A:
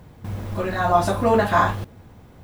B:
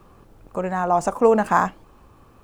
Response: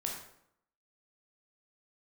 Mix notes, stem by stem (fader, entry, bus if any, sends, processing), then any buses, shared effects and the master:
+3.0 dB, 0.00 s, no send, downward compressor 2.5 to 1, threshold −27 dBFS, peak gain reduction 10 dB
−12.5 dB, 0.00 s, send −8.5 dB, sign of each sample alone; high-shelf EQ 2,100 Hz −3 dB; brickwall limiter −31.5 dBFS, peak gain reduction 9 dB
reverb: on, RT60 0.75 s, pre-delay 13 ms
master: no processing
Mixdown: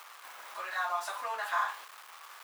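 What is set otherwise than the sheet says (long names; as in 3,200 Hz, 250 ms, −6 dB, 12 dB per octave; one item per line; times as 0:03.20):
stem B: missing high-shelf EQ 2,100 Hz −3 dB
master: extra four-pole ladder high-pass 840 Hz, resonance 25%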